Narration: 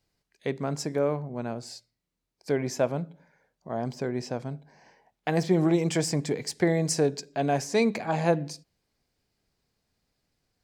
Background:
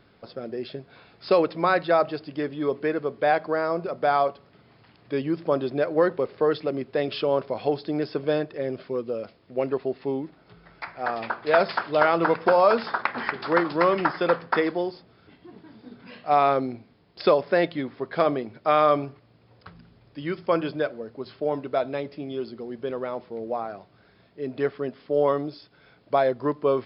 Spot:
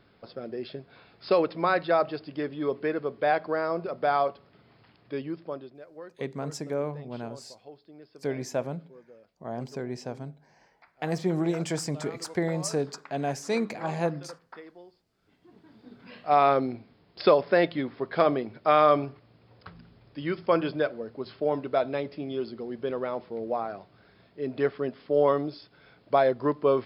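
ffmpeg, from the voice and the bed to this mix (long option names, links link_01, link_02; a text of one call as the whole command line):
ffmpeg -i stem1.wav -i stem2.wav -filter_complex "[0:a]adelay=5750,volume=-4dB[link_01];[1:a]volume=19.5dB,afade=type=out:start_time=4.82:duration=0.95:silence=0.1,afade=type=in:start_time=15.09:duration=1.39:silence=0.0749894[link_02];[link_01][link_02]amix=inputs=2:normalize=0" out.wav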